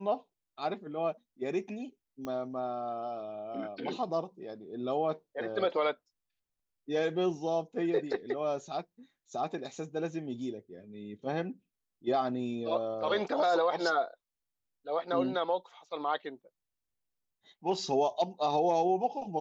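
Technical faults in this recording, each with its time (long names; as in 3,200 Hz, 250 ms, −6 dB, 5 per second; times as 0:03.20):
0:02.25: click −25 dBFS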